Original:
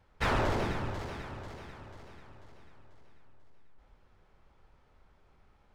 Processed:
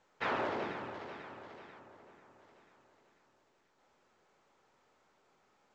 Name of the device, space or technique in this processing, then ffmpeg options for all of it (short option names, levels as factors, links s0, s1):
telephone: -filter_complex "[0:a]asettb=1/sr,asplit=3[s0][s1][s2];[s0]atrim=end=1.794[s3];[s1]atrim=start=1.79:end=2.39,asetpts=PTS-STARTPTS,afade=t=in:d=0.004:c=qsin,afade=t=out:st=0.596:d=0.004:c=qsin,highshelf=f=2800:g=-10[s4];[s2]atrim=start=2.386[s5];[s3][s4]acrossfade=d=0.004:c1=hsin:c2=qsin[s6];[s6][s5]acrossfade=d=0.004:c1=qsin:c2=hsin,highpass=270,lowpass=3400,volume=0.668" -ar 16000 -c:a pcm_mulaw